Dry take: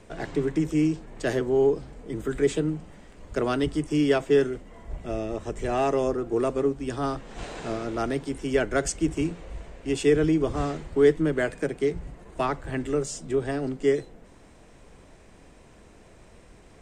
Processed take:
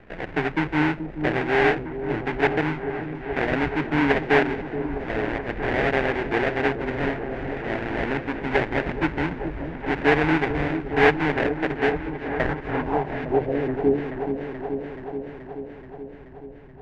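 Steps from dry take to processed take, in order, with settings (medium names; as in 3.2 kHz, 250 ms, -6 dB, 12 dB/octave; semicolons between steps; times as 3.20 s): sample-rate reducer 1.2 kHz, jitter 20%; low-pass sweep 2.1 kHz -> 150 Hz, 12.31–14.59 s; delay with an opening low-pass 429 ms, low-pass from 400 Hz, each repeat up 1 oct, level -6 dB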